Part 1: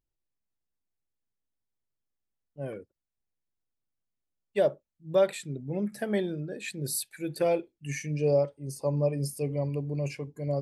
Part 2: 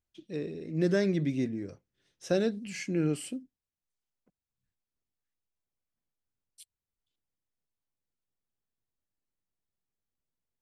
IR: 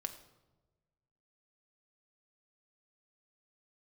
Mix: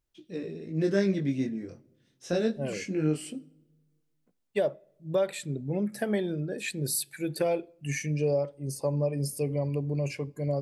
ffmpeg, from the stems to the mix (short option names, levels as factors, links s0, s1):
-filter_complex "[0:a]acompressor=threshold=0.0355:ratio=2.5,volume=1.33,asplit=2[s0][s1];[s1]volume=0.141[s2];[1:a]flanger=delay=16.5:depth=7.2:speed=0.25,volume=1.06,asplit=2[s3][s4];[s4]volume=0.422[s5];[2:a]atrim=start_sample=2205[s6];[s2][s5]amix=inputs=2:normalize=0[s7];[s7][s6]afir=irnorm=-1:irlink=0[s8];[s0][s3][s8]amix=inputs=3:normalize=0"